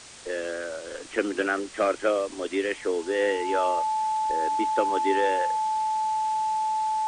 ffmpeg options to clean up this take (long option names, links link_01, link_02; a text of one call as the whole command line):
ffmpeg -i in.wav -af "bandreject=frequency=870:width=30,afftdn=noise_reduction=30:noise_floor=-40" out.wav